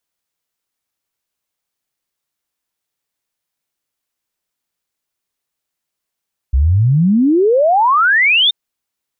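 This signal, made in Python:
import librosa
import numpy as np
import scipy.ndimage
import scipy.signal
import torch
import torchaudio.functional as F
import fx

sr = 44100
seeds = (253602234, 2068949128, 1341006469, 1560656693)

y = fx.ess(sr, length_s=1.98, from_hz=61.0, to_hz=3700.0, level_db=-8.5)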